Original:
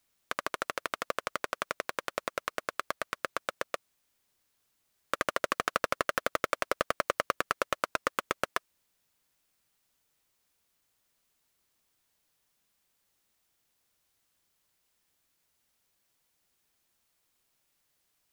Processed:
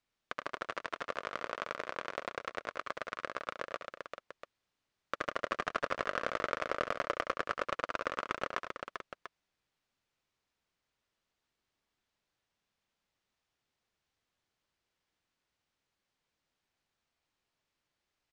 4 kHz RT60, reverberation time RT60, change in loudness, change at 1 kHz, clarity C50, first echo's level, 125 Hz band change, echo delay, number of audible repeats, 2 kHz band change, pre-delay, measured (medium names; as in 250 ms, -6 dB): no reverb, no reverb, -4.5 dB, -4.0 dB, no reverb, -10.5 dB, -3.5 dB, 69 ms, 5, -4.0 dB, no reverb